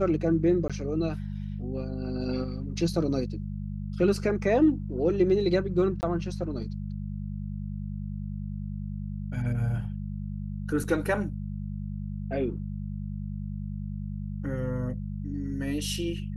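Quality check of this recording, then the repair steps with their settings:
mains hum 50 Hz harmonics 4 −34 dBFS
0:00.68–0:00.70: drop-out 16 ms
0:06.01–0:06.03: drop-out 19 ms
0:10.84: drop-out 3.9 ms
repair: hum removal 50 Hz, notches 4
repair the gap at 0:00.68, 16 ms
repair the gap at 0:06.01, 19 ms
repair the gap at 0:10.84, 3.9 ms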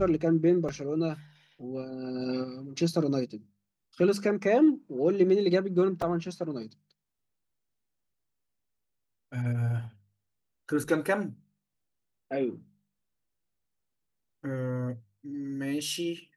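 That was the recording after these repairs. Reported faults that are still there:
none of them is left

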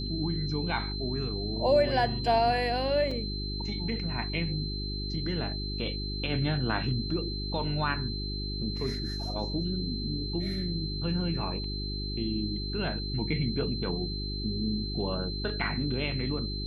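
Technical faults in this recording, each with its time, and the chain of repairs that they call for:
mains hum 50 Hz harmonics 8 −35 dBFS
whistle 4,100 Hz −37 dBFS
0:03.11: drop-out 3.9 ms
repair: notch filter 4,100 Hz, Q 30
hum removal 50 Hz, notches 8
repair the gap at 0:03.11, 3.9 ms

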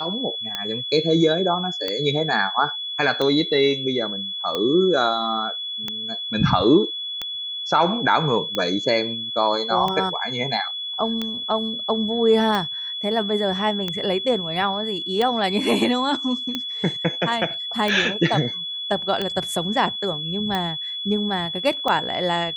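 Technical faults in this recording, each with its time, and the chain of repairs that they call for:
scratch tick 45 rpm −11 dBFS
whistle 3,400 Hz −27 dBFS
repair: click removal
notch filter 3,400 Hz, Q 30

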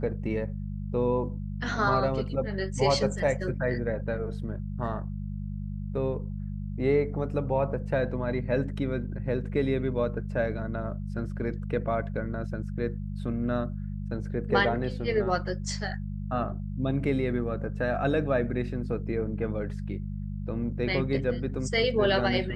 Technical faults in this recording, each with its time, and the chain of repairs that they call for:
mains hum 50 Hz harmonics 4 −34 dBFS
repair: hum removal 50 Hz, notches 4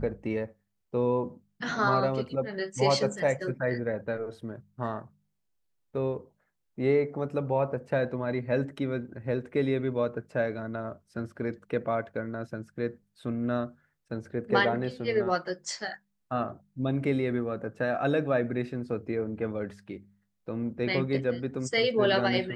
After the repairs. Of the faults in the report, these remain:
none of them is left

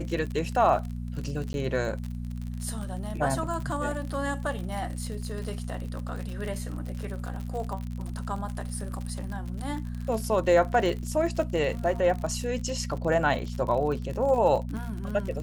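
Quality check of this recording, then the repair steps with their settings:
surface crackle 57 per second −33 dBFS
mains hum 60 Hz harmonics 4 −34 dBFS
0:01.53–0:01.54: drop-out 11 ms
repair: click removal
hum removal 60 Hz, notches 4
repair the gap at 0:01.53, 11 ms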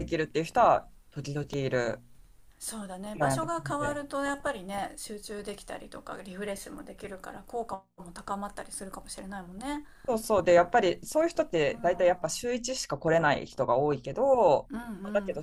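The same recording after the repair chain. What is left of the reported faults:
none of them is left

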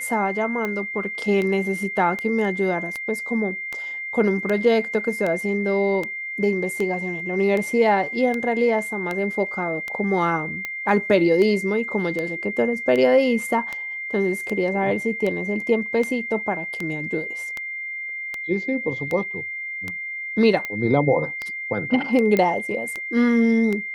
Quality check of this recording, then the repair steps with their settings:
scratch tick 78 rpm −14 dBFS
whistle 2,100 Hz −28 dBFS
0:22.37: click −9 dBFS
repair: click removal
notch filter 2,100 Hz, Q 30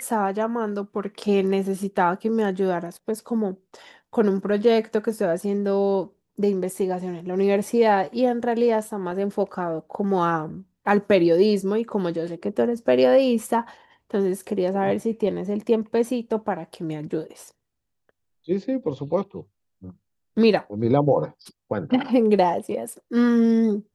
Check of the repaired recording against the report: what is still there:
none of them is left

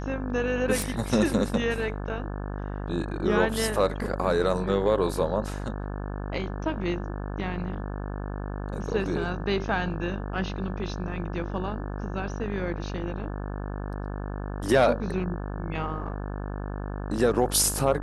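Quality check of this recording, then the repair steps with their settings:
mains buzz 50 Hz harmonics 35 −33 dBFS
0:00.82: click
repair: click removal
hum removal 50 Hz, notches 35

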